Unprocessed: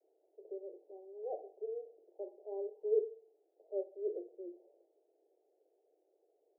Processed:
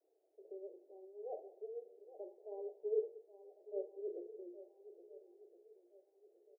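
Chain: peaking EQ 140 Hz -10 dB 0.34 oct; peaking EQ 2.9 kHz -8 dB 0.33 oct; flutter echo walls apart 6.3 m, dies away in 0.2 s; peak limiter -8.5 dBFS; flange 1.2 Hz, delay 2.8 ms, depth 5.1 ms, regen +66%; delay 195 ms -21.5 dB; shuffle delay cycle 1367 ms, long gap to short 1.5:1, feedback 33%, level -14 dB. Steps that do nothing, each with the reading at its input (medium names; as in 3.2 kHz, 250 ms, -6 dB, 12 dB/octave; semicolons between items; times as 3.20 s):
peaking EQ 140 Hz: input has nothing below 320 Hz; peaking EQ 2.9 kHz: input has nothing above 810 Hz; peak limiter -8.5 dBFS: peak at its input -22.0 dBFS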